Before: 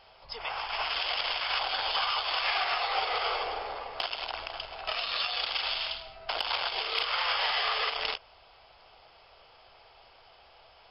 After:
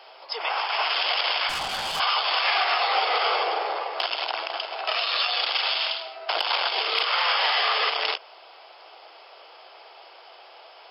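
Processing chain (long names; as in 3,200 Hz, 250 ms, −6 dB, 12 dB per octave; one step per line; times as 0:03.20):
elliptic high-pass filter 320 Hz, stop band 40 dB
in parallel at +1 dB: brickwall limiter −26.5 dBFS, peak gain reduction 10 dB
0:01.49–0:02.00: on the sum: tube saturation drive 27 dB, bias 0.55
level +3 dB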